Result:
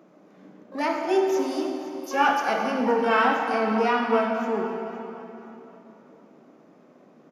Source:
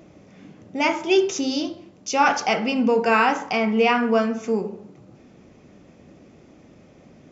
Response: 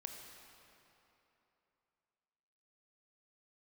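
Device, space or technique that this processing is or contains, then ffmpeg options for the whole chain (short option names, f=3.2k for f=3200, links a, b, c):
shimmer-style reverb: -filter_complex "[0:a]highpass=f=190:w=0.5412,highpass=f=190:w=1.3066,highshelf=f=1.9k:t=q:w=1.5:g=-7,asplit=2[a][b];[b]asetrate=88200,aresample=44100,atempo=0.5,volume=-10dB[c];[a][c]amix=inputs=2:normalize=0[d];[1:a]atrim=start_sample=2205[e];[d][e]afir=irnorm=-1:irlink=0,aecho=1:1:516|1032|1548:0.141|0.048|0.0163"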